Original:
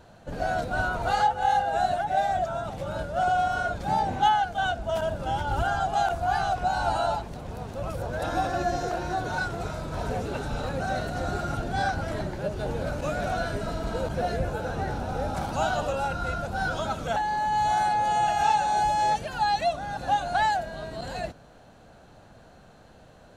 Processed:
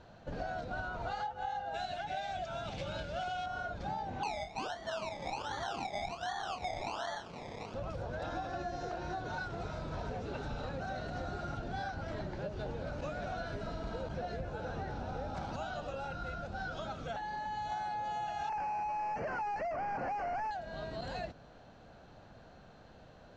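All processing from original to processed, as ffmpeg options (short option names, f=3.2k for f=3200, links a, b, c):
-filter_complex "[0:a]asettb=1/sr,asplit=3[a][b][c];[a]atrim=end=1.744[d];[b]atrim=start=1.74:end=3.46,asetpts=PTS-STARTPTS,afade=t=in:d=0.004:c=qsin,afade=t=out:st=1.716:d=0.004:c=qsin,highshelf=f=1.6k:t=q:w=1.5:g=8,bandreject=f=1.9k:w=9.7[e];[c]atrim=start=3.456[f];[d][e]acrossfade=d=0.004:c1=hsin:c2=qsin[g];[g][f]acrossfade=d=0.004:c1=qsin:c2=hsin,asettb=1/sr,asplit=3[h][i][j];[h]atrim=end=4.234[k];[i]atrim=start=4.23:end=7.74,asetpts=PTS-STARTPTS,afade=t=in:d=0.004:c=qsin,afade=t=out:st=3.506:d=0.004:c=qsin,highpass=f=360:p=1,acrusher=samples=24:mix=1:aa=0.000001:lfo=1:lforange=14.4:lforate=1.3,asplit=2[l][m];[m]adelay=29,volume=-7.5dB[n];[l][n]amix=inputs=2:normalize=0,atrim=end_sample=154791[o];[j]atrim=start=7.736[p];[k][o]acrossfade=d=0.004:c1=hsin:c2=qsin[q];[q][p]acrossfade=d=0.004:c1=qsin:c2=hsin,asettb=1/sr,asplit=3[r][s][t];[r]atrim=end=15.564[u];[s]atrim=start=15.56:end=17.72,asetpts=PTS-STARTPTS,afade=t=in:d=0.004:c=qsin,afade=t=out:st=2.156:d=0.004:c=qsin,equalizer=f=950:w=4.9:g=-5,flanger=delay=2.9:depth=5:regen=-75:speed=1:shape=triangular[v];[t]atrim=start=17.716[w];[u][v]acrossfade=d=0.004:c1=hsin:c2=qsin[x];[x][w]acrossfade=d=0.004:c1=qsin:c2=hsin,asettb=1/sr,asplit=3[y][z][aa];[y]atrim=end=18.494[ab];[z]atrim=start=18.49:end=20.51,asetpts=PTS-STARTPTS,afade=t=in:d=0.004:c=qsin,afade=t=out:st=2.016:d=0.004:c=qsin,highshelf=f=4.3k:g=-10.5,asplit=2[ac][ad];[ad]highpass=f=720:p=1,volume=33dB,asoftclip=type=tanh:threshold=-13dB[ae];[ac][ae]amix=inputs=2:normalize=0,lowpass=f=1k:p=1,volume=-6dB,asuperstop=centerf=3600:order=4:qfactor=1.6[af];[aa]atrim=start=20.506[ag];[ab][af]acrossfade=d=0.004:c1=hsin:c2=qsin[ah];[ah][ag]acrossfade=d=0.004:c1=qsin:c2=hsin,lowpass=f=5.9k:w=0.5412,lowpass=f=5.9k:w=1.3066,acompressor=threshold=-32dB:ratio=6,volume=-4dB"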